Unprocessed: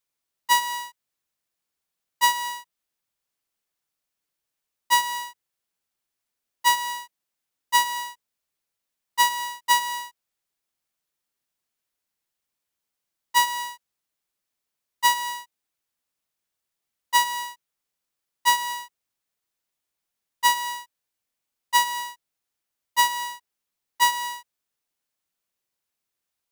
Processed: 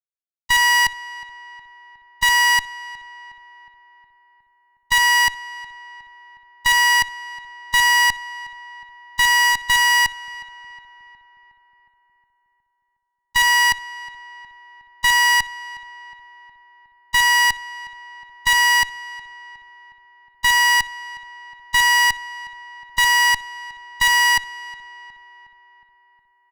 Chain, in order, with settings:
comb filter 2.7 ms, depth 48%
output level in coarse steps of 20 dB
brickwall limiter −17 dBFS, peak gain reduction 4.5 dB
reversed playback
downward compressor 20 to 1, threshold −34 dBFS, peak gain reduction 13.5 dB
reversed playback
resonant band-pass 1,900 Hz, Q 0.62
fuzz pedal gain 48 dB, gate −54 dBFS
on a send: feedback echo with a low-pass in the loop 363 ms, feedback 61%, low-pass 2,700 Hz, level −16.5 dB

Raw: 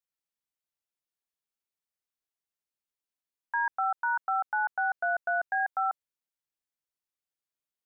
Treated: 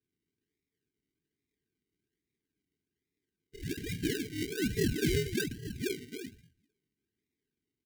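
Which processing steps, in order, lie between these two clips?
pitch shift by two crossfaded delay taps +10 semitones
single-tap delay 354 ms −17.5 dB
downward compressor 8 to 1, threshold −31 dBFS, peak gain reduction 5.5 dB
all-pass phaser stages 4, 0.41 Hz, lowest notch 550–1,100 Hz
volume swells 181 ms
feedback delay network reverb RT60 0.7 s, high-frequency decay 0.4×, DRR −9 dB
sample-and-hold swept by an LFO 41×, swing 60% 1.2 Hz
gain into a clipping stage and back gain 24 dB
linear-phase brick-wall band-stop 460–1,500 Hz
low-shelf EQ 480 Hz −3.5 dB
notch comb filter 870 Hz
level +6 dB

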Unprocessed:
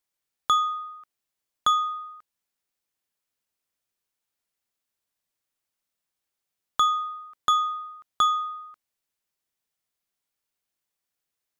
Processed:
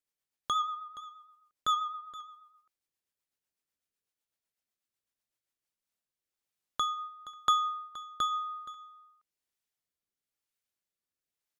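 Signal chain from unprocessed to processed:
rotating-speaker cabinet horn 8 Hz, later 1 Hz, at 0:05.24
on a send: single-tap delay 472 ms −17 dB
on the sum: level −3.5 dB

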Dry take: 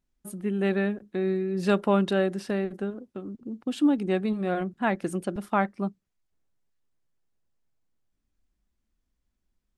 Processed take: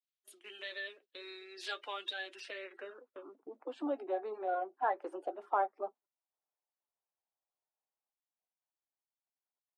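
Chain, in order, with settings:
spectral magnitudes quantised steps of 30 dB
band-pass filter sweep 3,500 Hz → 800 Hz, 0:02.18–0:03.52
Butterworth high-pass 280 Hz 48 dB per octave
in parallel at +1 dB: downward compressor, threshold −46 dBFS, peak gain reduction 19.5 dB
on the sum: noise gate −59 dBFS, range −13 dB
flanger 0.35 Hz, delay 5.3 ms, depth 2.3 ms, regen −63%
level +2 dB

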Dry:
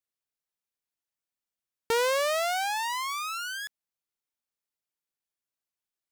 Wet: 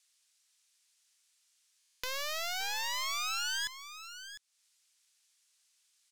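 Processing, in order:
meter weighting curve ITU-R 468
in parallel at +1 dB: brickwall limiter −28 dBFS, peak gain reduction 22 dB
on the sum: soft clipping −21 dBFS, distortion −5 dB
on a send: single-tap delay 702 ms −12.5 dB
on the sum: buffer that repeats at 0:01.78, samples 1,024, times 10
one half of a high-frequency compander encoder only
level −5 dB

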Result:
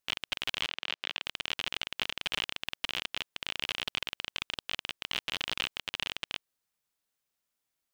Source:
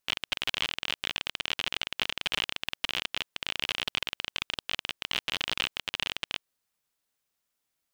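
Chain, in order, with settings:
0:00.66–0:01.22: band-pass filter 290–4,900 Hz
level −3 dB

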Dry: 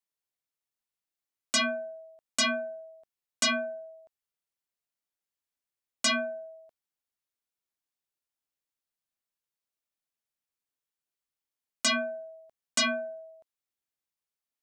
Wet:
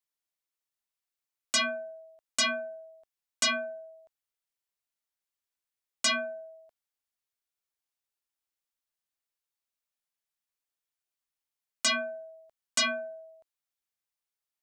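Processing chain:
parametric band 200 Hz −6.5 dB 2.6 octaves

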